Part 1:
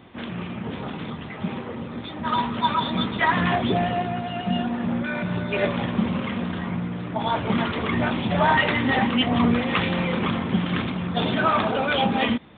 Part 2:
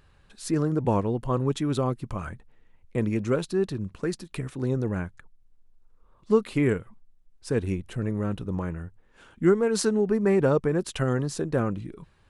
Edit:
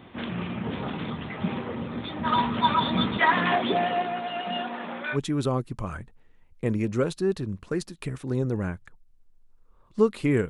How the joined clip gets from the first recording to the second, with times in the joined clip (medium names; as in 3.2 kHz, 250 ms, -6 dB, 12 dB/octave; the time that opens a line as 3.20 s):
part 1
3.18–5.18 s: high-pass 220 Hz -> 620 Hz
5.15 s: go over to part 2 from 1.47 s, crossfade 0.06 s